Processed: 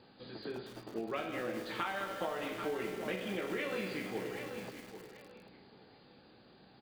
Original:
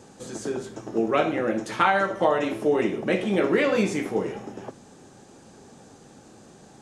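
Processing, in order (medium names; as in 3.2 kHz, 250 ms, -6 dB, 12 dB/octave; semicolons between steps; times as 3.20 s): knee-point frequency compression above 3.3 kHz 1.5:1; brick-wall FIR low-pass 4.9 kHz; treble shelf 2.1 kHz +10 dB; feedback comb 62 Hz, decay 1.3 s, harmonics all, mix 70%; on a send: feedback delay 784 ms, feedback 24%, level -14 dB; on the sum: compression 4:1, threshold -31 dBFS, peak gain reduction 8.5 dB; bit-crushed delay 209 ms, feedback 80%, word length 7-bit, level -9 dB; trim -3.5 dB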